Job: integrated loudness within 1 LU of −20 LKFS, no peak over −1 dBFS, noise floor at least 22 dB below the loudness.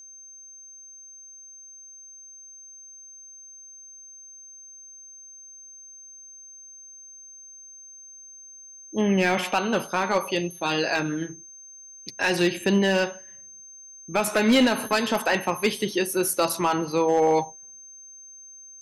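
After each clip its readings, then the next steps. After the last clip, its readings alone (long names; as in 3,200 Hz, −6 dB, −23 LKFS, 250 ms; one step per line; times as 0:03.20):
share of clipped samples 0.3%; peaks flattened at −13.5 dBFS; interfering tone 6,300 Hz; level of the tone −43 dBFS; integrated loudness −23.5 LKFS; sample peak −13.5 dBFS; target loudness −20.0 LKFS
→ clipped peaks rebuilt −13.5 dBFS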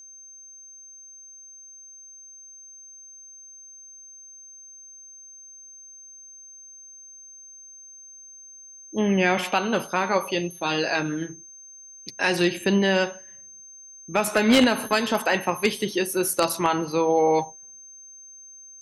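share of clipped samples 0.0%; interfering tone 6,300 Hz; level of the tone −43 dBFS
→ notch filter 6,300 Hz, Q 30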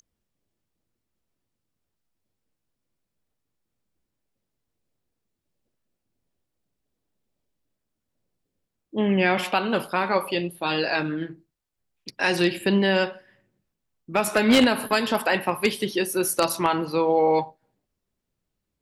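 interfering tone none found; integrated loudness −23.0 LKFS; sample peak −4.5 dBFS; target loudness −20.0 LKFS
→ level +3 dB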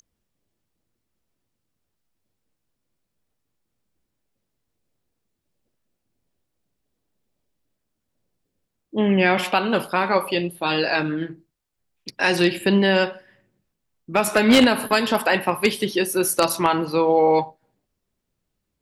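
integrated loudness −20.0 LKFS; sample peak −1.5 dBFS; background noise floor −79 dBFS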